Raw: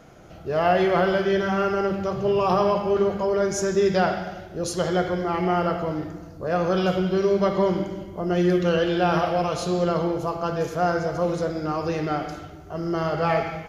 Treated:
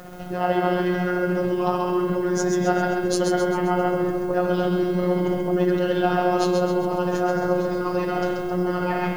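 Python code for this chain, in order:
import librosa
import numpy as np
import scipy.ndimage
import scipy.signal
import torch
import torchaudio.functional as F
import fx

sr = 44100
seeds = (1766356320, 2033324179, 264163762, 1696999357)

p1 = fx.lowpass(x, sr, hz=3400.0, slope=6)
p2 = fx.notch(p1, sr, hz=2300.0, q=12.0)
p3 = fx.over_compress(p2, sr, threshold_db=-32.0, ratio=-1.0)
p4 = p2 + F.gain(torch.from_numpy(p3), 2.0).numpy()
p5 = fx.stretch_grains(p4, sr, factor=0.67, grain_ms=146.0)
p6 = fx.robotise(p5, sr, hz=179.0)
p7 = fx.dmg_noise_colour(p6, sr, seeds[0], colour='blue', level_db=-57.0)
y = fx.echo_split(p7, sr, split_hz=680.0, low_ms=728, high_ms=132, feedback_pct=52, wet_db=-5)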